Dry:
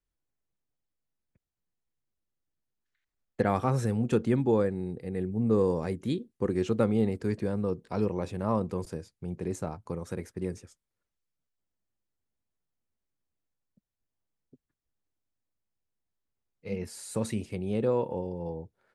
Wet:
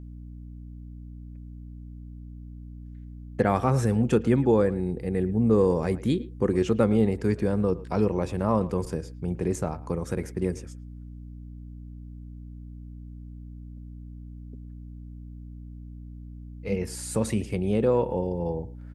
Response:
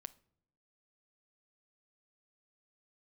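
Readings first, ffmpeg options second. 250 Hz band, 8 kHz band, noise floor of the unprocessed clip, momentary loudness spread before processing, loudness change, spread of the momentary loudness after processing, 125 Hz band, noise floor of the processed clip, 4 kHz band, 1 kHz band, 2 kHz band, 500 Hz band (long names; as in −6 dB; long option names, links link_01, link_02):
+5.0 dB, +6.0 dB, below −85 dBFS, 12 LU, +4.5 dB, 21 LU, +5.0 dB, −42 dBFS, +4.0 dB, +4.0 dB, +4.5 dB, +4.5 dB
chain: -filter_complex "[0:a]equalizer=frequency=4000:width=7.7:gain=-5.5,asplit=2[link_01][link_02];[link_02]adelay=110,highpass=300,lowpass=3400,asoftclip=type=hard:threshold=-19.5dB,volume=-18dB[link_03];[link_01][link_03]amix=inputs=2:normalize=0,asplit=2[link_04][link_05];[link_05]alimiter=limit=-22.5dB:level=0:latency=1:release=357,volume=-2dB[link_06];[link_04][link_06]amix=inputs=2:normalize=0,aeval=exprs='val(0)+0.00891*(sin(2*PI*60*n/s)+sin(2*PI*2*60*n/s)/2+sin(2*PI*3*60*n/s)/3+sin(2*PI*4*60*n/s)/4+sin(2*PI*5*60*n/s)/5)':channel_layout=same,volume=1.5dB"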